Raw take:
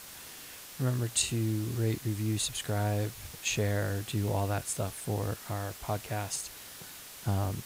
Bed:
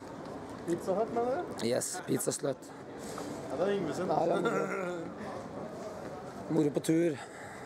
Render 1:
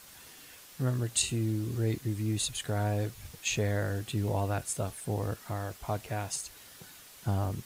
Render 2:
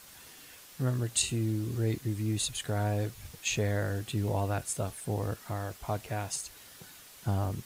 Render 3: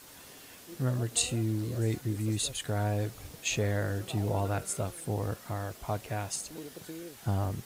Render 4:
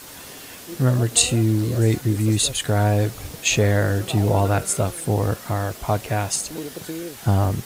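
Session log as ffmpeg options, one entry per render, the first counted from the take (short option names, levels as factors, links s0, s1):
-af "afftdn=nr=6:nf=-47"
-af anull
-filter_complex "[1:a]volume=0.168[s0];[0:a][s0]amix=inputs=2:normalize=0"
-af "volume=3.76"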